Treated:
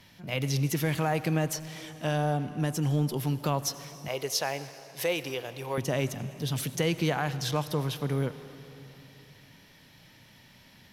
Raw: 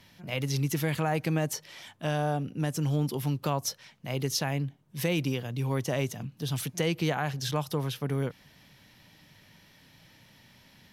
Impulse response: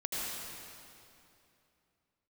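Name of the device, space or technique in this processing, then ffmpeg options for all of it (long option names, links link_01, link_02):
saturated reverb return: -filter_complex "[0:a]asplit=2[link_01][link_02];[1:a]atrim=start_sample=2205[link_03];[link_02][link_03]afir=irnorm=-1:irlink=0,asoftclip=type=tanh:threshold=-25dB,volume=-13.5dB[link_04];[link_01][link_04]amix=inputs=2:normalize=0,asettb=1/sr,asplit=3[link_05][link_06][link_07];[link_05]atrim=end=4.084[link_08];[link_06]atrim=start=4.08:end=5.78,asetpts=PTS-STARTPTS,afade=type=in:duration=0.004:curve=qsin,afade=type=out:start_time=1.696:duration=0.004:curve=qsin,lowshelf=frequency=330:width_type=q:width=1.5:gain=-12[link_09];[link_07]atrim=start=5.776[link_10];[link_08][link_09]acrossfade=duration=0.004:curve1=hsin:curve2=qsin[link_11];[link_11][link_10]acrossfade=duration=0.004:curve1=qsin:curve2=hsin"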